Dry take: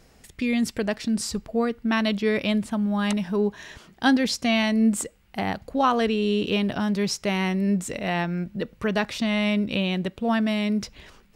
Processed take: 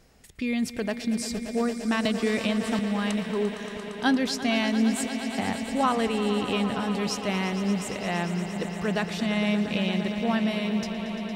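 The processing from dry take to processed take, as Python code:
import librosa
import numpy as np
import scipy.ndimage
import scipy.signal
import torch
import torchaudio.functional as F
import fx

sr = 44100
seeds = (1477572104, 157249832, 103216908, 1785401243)

y = fx.echo_swell(x, sr, ms=115, loudest=5, wet_db=-14)
y = fx.band_squash(y, sr, depth_pct=100, at=(2.05, 2.79))
y = F.gain(torch.from_numpy(y), -3.5).numpy()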